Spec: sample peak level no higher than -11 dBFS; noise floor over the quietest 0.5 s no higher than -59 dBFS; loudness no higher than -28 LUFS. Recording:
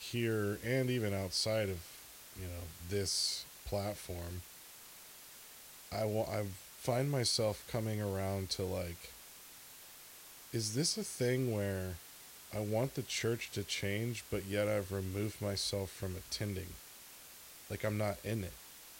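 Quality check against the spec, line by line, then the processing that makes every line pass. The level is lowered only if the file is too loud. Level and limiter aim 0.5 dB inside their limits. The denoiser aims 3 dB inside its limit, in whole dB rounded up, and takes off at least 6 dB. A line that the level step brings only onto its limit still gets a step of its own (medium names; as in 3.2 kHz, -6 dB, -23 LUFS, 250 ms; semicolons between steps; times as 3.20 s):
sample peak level -20.0 dBFS: pass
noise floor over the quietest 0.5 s -55 dBFS: fail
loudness -37.0 LUFS: pass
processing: noise reduction 7 dB, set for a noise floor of -55 dBFS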